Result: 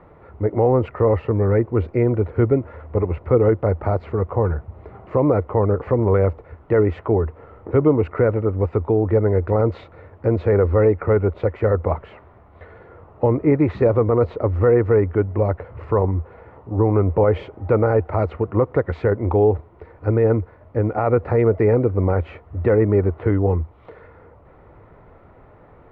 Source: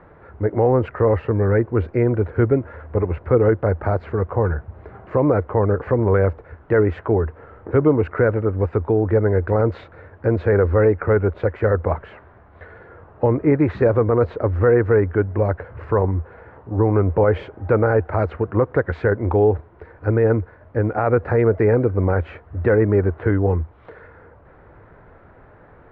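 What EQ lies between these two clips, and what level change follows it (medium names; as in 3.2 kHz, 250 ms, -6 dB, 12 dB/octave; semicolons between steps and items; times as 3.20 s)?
peaking EQ 1.6 kHz -12.5 dB 0.21 oct; 0.0 dB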